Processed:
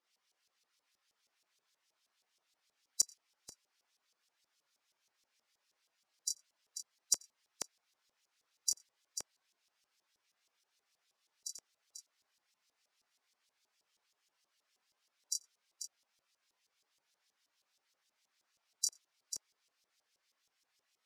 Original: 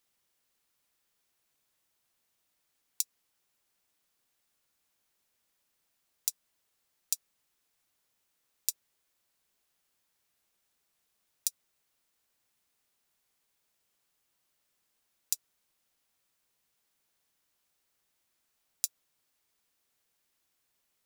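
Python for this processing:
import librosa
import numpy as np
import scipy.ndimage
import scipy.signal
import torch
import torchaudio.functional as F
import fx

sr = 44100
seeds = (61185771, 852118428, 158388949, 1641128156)

y = fx.spec_gate(x, sr, threshold_db=-10, keep='strong')
y = fx.peak_eq(y, sr, hz=5300.0, db=5.0, octaves=0.73)
y = fx.doubler(y, sr, ms=27.0, db=-6.5)
y = fx.echo_multitap(y, sr, ms=(88, 491), db=(-20.0, -10.0))
y = fx.filter_lfo_bandpass(y, sr, shape='saw_up', hz=6.3, low_hz=500.0, high_hz=5700.0, q=0.87)
y = y * 10.0 ** (3.5 / 20.0)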